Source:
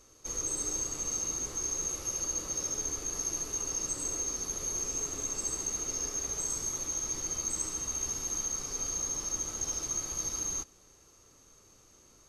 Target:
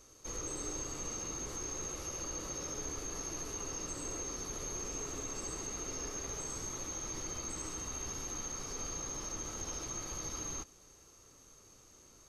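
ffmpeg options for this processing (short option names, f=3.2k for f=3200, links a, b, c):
-filter_complex "[0:a]acrossover=split=4200[a][b];[b]acompressor=threshold=-45dB:ratio=4:attack=1:release=60[c];[a][c]amix=inputs=2:normalize=0"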